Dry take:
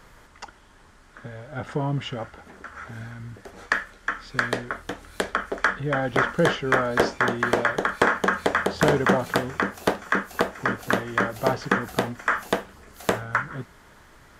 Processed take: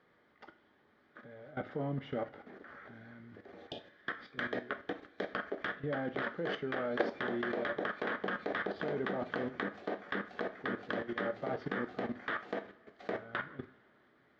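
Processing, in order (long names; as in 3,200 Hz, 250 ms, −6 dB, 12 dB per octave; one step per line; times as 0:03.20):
stylus tracing distortion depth 0.31 ms
loudspeaker in its box 190–3,400 Hz, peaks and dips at 330 Hz +3 dB, 960 Hz −9 dB, 1,400 Hz −5 dB, 2,700 Hz −9 dB
output level in coarse steps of 17 dB
coupled-rooms reverb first 0.32 s, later 2.4 s, from −21 dB, DRR 8 dB
healed spectral selection 0:03.58–0:03.93, 890–2,400 Hz both
level −1.5 dB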